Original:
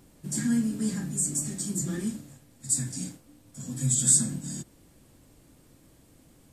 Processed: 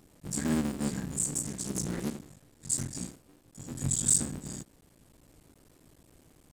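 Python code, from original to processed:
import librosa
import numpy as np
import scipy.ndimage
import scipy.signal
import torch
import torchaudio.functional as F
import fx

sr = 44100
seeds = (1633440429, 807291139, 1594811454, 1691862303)

y = fx.cycle_switch(x, sr, every=3, mode='muted')
y = fx.rider(y, sr, range_db=3, speed_s=2.0)
y = fx.doppler_dist(y, sr, depth_ms=0.46, at=(1.44, 2.9))
y = y * 10.0 ** (-3.5 / 20.0)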